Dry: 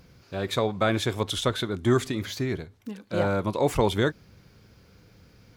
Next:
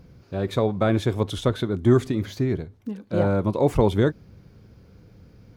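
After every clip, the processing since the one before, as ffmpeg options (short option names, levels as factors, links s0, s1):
-af "tiltshelf=f=880:g=6,bandreject=f=7500:w=30"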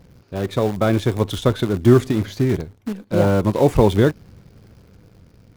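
-filter_complex "[0:a]dynaudnorm=f=240:g=9:m=1.58,asplit=2[s0][s1];[s1]acrusher=bits=5:dc=4:mix=0:aa=0.000001,volume=0.501[s2];[s0][s2]amix=inputs=2:normalize=0,volume=0.841"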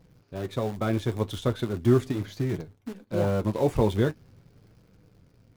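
-af "flanger=delay=6.1:depth=3.2:regen=-49:speed=0.41:shape=triangular,volume=0.562"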